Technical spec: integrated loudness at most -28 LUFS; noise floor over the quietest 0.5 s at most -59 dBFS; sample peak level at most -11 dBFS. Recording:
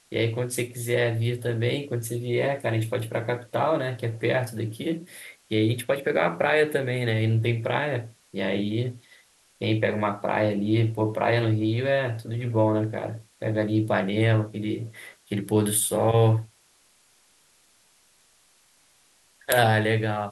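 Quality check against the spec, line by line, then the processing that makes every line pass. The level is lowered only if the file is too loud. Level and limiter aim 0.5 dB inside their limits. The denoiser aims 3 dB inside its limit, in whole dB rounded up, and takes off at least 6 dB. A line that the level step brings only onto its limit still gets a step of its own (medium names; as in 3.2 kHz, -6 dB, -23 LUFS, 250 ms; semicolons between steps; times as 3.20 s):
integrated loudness -25.5 LUFS: fail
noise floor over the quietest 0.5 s -61 dBFS: pass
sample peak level -5.0 dBFS: fail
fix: trim -3 dB; peak limiter -11.5 dBFS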